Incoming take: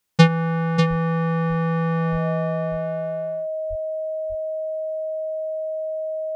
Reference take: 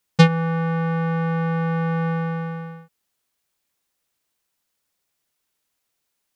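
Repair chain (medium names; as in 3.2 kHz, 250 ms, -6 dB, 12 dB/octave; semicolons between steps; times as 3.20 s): band-stop 630 Hz, Q 30; de-plosive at 0.89/2.11/3.69 s; inverse comb 593 ms -6.5 dB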